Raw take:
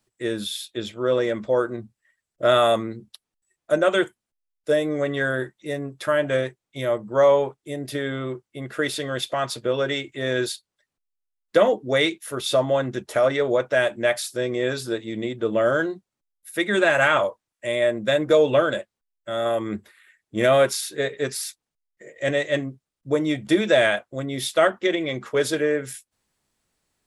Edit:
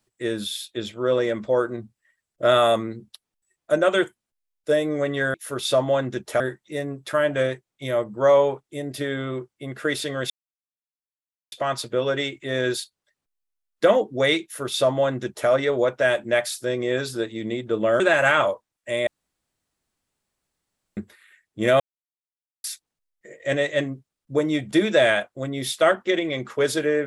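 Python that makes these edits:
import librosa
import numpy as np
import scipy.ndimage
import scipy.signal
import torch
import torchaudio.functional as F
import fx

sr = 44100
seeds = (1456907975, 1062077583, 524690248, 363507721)

y = fx.edit(x, sr, fx.insert_silence(at_s=9.24, length_s=1.22),
    fx.duplicate(start_s=12.15, length_s=1.06, to_s=5.34),
    fx.cut(start_s=15.72, length_s=1.04),
    fx.room_tone_fill(start_s=17.83, length_s=1.9),
    fx.silence(start_s=20.56, length_s=0.84), tone=tone)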